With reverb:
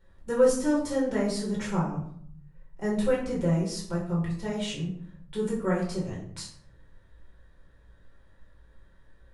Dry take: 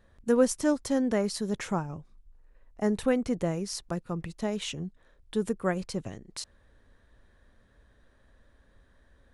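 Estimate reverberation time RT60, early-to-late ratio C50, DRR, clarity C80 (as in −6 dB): 0.60 s, 5.5 dB, −6.0 dB, 8.5 dB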